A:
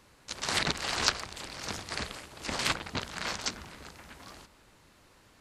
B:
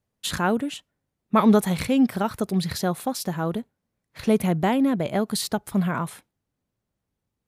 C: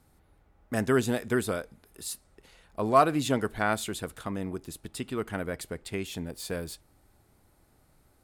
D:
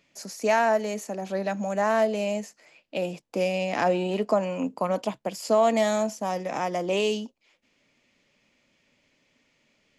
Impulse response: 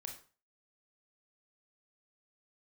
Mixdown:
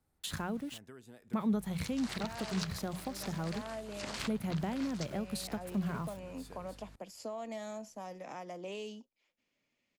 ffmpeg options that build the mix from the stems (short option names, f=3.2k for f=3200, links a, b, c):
-filter_complex "[0:a]highpass=170,aeval=exprs='val(0)+0.00282*(sin(2*PI*50*n/s)+sin(2*PI*2*50*n/s)/2+sin(2*PI*3*50*n/s)/3+sin(2*PI*4*50*n/s)/4+sin(2*PI*5*50*n/s)/5)':c=same,adelay=1550,volume=-2.5dB[a];[1:a]bandreject=f=60:t=h:w=6,bandreject=f=120:t=h:w=6,bandreject=f=180:t=h:w=6,aeval=exprs='val(0)*gte(abs(val(0)),0.0133)':c=same,volume=-5dB[b];[2:a]acompressor=threshold=-35dB:ratio=6,volume=-15dB[c];[3:a]adelay=1750,volume=-14.5dB[d];[a][b][c][d]amix=inputs=4:normalize=0,acrossover=split=160[e][f];[f]acompressor=threshold=-40dB:ratio=3[g];[e][g]amix=inputs=2:normalize=0"